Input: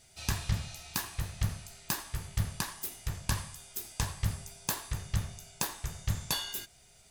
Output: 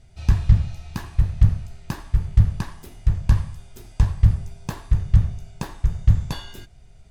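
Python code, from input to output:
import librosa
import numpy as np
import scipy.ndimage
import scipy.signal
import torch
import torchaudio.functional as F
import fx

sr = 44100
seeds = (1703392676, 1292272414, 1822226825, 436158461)

y = fx.riaa(x, sr, side='playback')
y = F.gain(torch.from_numpy(y), 2.0).numpy()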